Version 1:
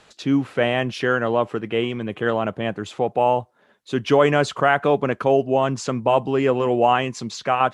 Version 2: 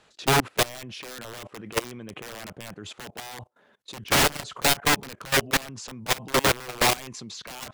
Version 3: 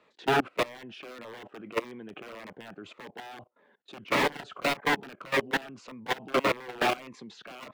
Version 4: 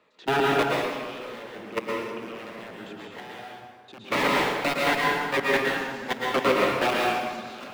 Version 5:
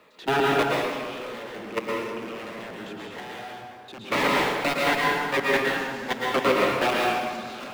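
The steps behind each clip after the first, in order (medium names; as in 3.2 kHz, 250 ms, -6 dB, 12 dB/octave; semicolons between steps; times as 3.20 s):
integer overflow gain 15.5 dB; level held to a coarse grid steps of 21 dB; trim +2.5 dB
three-band isolator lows -17 dB, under 200 Hz, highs -20 dB, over 3 kHz; Shepard-style phaser falling 1.7 Hz
plate-style reverb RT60 1.5 s, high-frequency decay 0.8×, pre-delay 100 ms, DRR -3.5 dB
companding laws mixed up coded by mu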